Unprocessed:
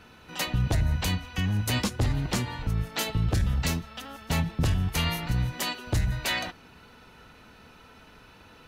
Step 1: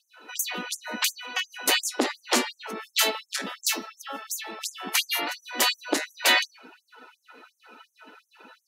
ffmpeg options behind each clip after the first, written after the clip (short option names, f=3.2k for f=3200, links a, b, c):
-af "bandreject=f=202.1:t=h:w=4,bandreject=f=404.2:t=h:w=4,bandreject=f=606.3:t=h:w=4,bandreject=f=808.4:t=h:w=4,bandreject=f=1.0105k:t=h:w=4,bandreject=f=1.2126k:t=h:w=4,bandreject=f=1.4147k:t=h:w=4,bandreject=f=1.6168k:t=h:w=4,bandreject=f=1.8189k:t=h:w=4,bandreject=f=2.021k:t=h:w=4,bandreject=f=2.2231k:t=h:w=4,bandreject=f=2.4252k:t=h:w=4,bandreject=f=2.6273k:t=h:w=4,bandreject=f=2.8294k:t=h:w=4,bandreject=f=3.0315k:t=h:w=4,bandreject=f=3.2336k:t=h:w=4,bandreject=f=3.4357k:t=h:w=4,bandreject=f=3.6378k:t=h:w=4,bandreject=f=3.8399k:t=h:w=4,bandreject=f=4.042k:t=h:w=4,bandreject=f=4.2441k:t=h:w=4,bandreject=f=4.4462k:t=h:w=4,bandreject=f=4.6483k:t=h:w=4,bandreject=f=4.8504k:t=h:w=4,bandreject=f=5.0525k:t=h:w=4,bandreject=f=5.2546k:t=h:w=4,bandreject=f=5.4567k:t=h:w=4,bandreject=f=5.6588k:t=h:w=4,bandreject=f=5.8609k:t=h:w=4,bandreject=f=6.063k:t=h:w=4,afftdn=nr=13:nf=-50,afftfilt=real='re*gte(b*sr/1024,210*pow(6100/210,0.5+0.5*sin(2*PI*2.8*pts/sr)))':imag='im*gte(b*sr/1024,210*pow(6100/210,0.5+0.5*sin(2*PI*2.8*pts/sr)))':win_size=1024:overlap=0.75,volume=9dB"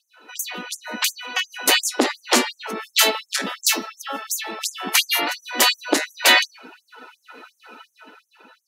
-af "dynaudnorm=f=120:g=17:m=10dB"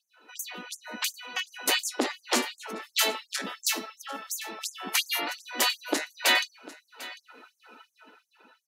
-af "aecho=1:1:747:0.119,volume=-8.5dB"